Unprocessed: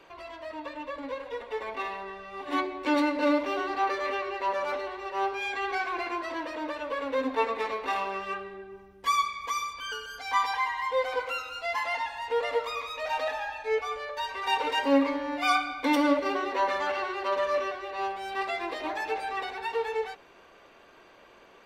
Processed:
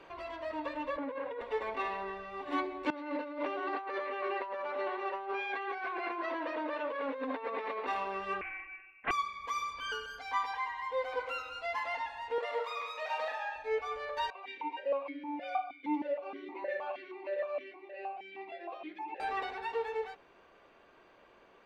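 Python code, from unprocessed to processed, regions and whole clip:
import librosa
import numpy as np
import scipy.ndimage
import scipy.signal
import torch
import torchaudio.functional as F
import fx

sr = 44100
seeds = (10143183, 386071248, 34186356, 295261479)

y = fx.chain(x, sr, fx.bandpass_edges(low_hz=140.0, high_hz=2300.0),
    fx.over_compress(threshold_db=-39.0, ratio=-1.0), at=(0.97, 1.41))
y = fx.chain(y, sr, fx.bandpass_edges(low_hz=270.0, high_hz=3600.0),
    fx.over_compress(threshold_db=-35.0, ratio=-1.0), at=(2.9, 7.87))
y = fx.chain(y, sr, fx.room_flutter(wall_m=10.9, rt60_s=0.4),
    fx.freq_invert(carrier_hz=2700),
    fx.doppler_dist(depth_ms=0.55), at=(8.41, 9.11))
y = fx.chain(y, sr, fx.highpass(hz=470.0, slope=12),
    fx.doubler(ms=44.0, db=-5.5), at=(12.38, 13.56))
y = fx.chain(y, sr, fx.comb(ms=5.6, depth=0.71),
    fx.vowel_held(hz=6.4), at=(14.3, 19.2))
y = fx.high_shelf(y, sr, hz=4900.0, db=-11.5)
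y = fx.rider(y, sr, range_db=4, speed_s=0.5)
y = y * librosa.db_to_amplitude(-3.0)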